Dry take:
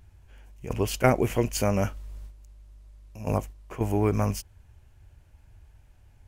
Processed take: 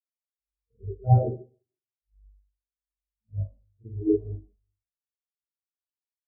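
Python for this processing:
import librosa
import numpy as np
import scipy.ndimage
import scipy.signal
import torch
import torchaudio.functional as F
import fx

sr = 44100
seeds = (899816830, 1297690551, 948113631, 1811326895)

y = scipy.signal.sosfilt(scipy.signal.butter(4, 1600.0, 'lowpass', fs=sr, output='sos'), x)
y = fx.gate_flip(y, sr, shuts_db=-25.0, range_db=-28, at=(1.25, 3.27), fade=0.02)
y = fx.rev_spring(y, sr, rt60_s=1.5, pass_ms=(41, 50), chirp_ms=65, drr_db=-9.0)
y = fx.spectral_expand(y, sr, expansion=4.0)
y = y * librosa.db_to_amplitude(-5.5)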